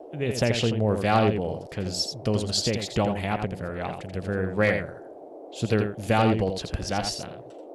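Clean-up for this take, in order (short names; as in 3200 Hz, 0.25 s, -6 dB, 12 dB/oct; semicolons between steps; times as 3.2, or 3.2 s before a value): clip repair -11 dBFS; noise print and reduce 28 dB; inverse comb 84 ms -7 dB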